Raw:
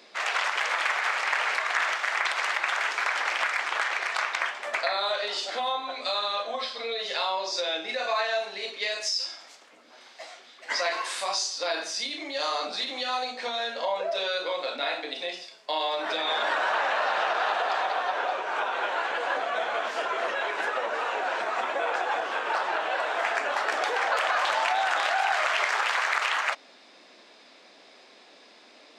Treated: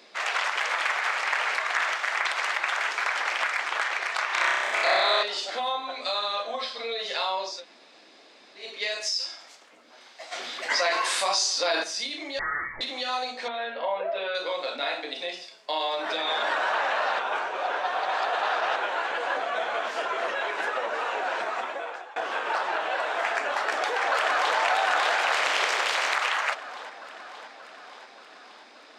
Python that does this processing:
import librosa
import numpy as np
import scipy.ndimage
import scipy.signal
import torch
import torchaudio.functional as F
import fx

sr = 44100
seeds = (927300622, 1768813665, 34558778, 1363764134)

y = fx.highpass(x, sr, hz=140.0, slope=12, at=(2.68, 3.42))
y = fx.room_flutter(y, sr, wall_m=5.4, rt60_s=1.5, at=(4.26, 5.23))
y = fx.env_flatten(y, sr, amount_pct=50, at=(10.31, 11.82), fade=0.02)
y = fx.freq_invert(y, sr, carrier_hz=2500, at=(12.39, 12.81))
y = fx.lowpass(y, sr, hz=3000.0, slope=24, at=(13.48, 14.35))
y = fx.echo_throw(y, sr, start_s=23.46, length_s=1.11, ms=580, feedback_pct=65, wet_db=-3.5)
y = fx.spec_clip(y, sr, under_db=12, at=(25.12, 26.14), fade=0.02)
y = fx.edit(y, sr, fx.room_tone_fill(start_s=7.54, length_s=1.1, crossfade_s=0.24),
    fx.reverse_span(start_s=17.19, length_s=1.57),
    fx.fade_out_to(start_s=21.42, length_s=0.74, floor_db=-22.5), tone=tone)